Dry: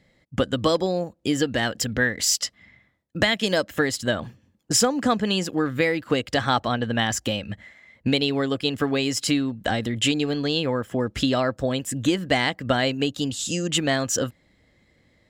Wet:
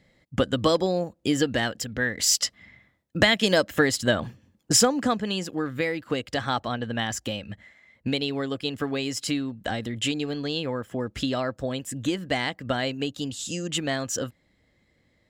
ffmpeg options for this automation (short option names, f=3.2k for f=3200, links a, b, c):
-af "volume=9dB,afade=t=out:st=1.54:d=0.35:silence=0.421697,afade=t=in:st=1.89:d=0.52:silence=0.334965,afade=t=out:st=4.72:d=0.5:silence=0.473151"